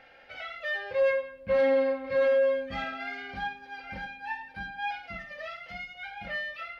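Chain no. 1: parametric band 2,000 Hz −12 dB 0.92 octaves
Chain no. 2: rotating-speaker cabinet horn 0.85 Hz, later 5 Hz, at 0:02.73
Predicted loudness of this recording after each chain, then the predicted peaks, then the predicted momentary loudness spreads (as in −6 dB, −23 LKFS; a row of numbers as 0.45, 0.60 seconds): −29.5, −32.0 LKFS; −18.5, −17.5 dBFS; 21, 16 LU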